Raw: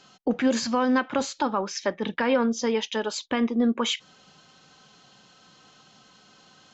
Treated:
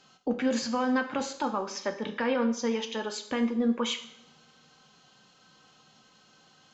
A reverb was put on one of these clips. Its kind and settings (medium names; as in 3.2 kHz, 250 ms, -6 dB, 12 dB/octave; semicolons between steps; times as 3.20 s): two-slope reverb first 0.65 s, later 2.6 s, from -25 dB, DRR 6 dB; trim -5.5 dB